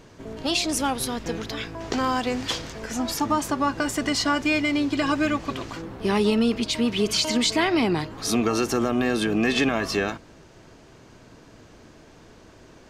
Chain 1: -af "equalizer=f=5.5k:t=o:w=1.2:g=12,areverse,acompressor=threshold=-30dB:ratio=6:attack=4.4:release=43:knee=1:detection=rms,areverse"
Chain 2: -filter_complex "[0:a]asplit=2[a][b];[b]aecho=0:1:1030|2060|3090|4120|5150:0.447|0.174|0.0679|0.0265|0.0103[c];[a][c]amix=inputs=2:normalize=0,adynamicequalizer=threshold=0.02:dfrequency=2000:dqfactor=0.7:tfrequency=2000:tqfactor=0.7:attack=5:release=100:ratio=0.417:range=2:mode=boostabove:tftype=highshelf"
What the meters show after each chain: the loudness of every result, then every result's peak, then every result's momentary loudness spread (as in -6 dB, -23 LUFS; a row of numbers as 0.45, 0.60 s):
-32.0, -22.5 LUFS; -18.0, -6.5 dBFS; 17, 12 LU